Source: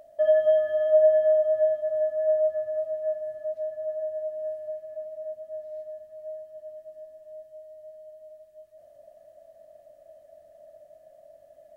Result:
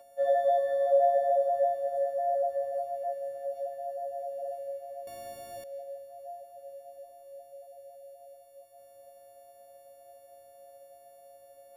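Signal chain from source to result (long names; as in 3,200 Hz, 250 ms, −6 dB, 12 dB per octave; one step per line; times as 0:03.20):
every partial snapped to a pitch grid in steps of 4 semitones
reverb whose tail is shaped and stops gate 370 ms flat, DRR 9 dB
0:05.07–0:05.64: every bin compressed towards the loudest bin 2 to 1
level −3.5 dB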